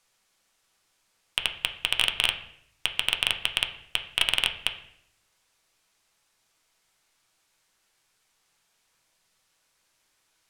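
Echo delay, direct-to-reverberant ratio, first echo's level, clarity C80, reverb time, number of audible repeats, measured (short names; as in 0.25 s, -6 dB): none, 4.0 dB, none, 14.0 dB, 0.70 s, none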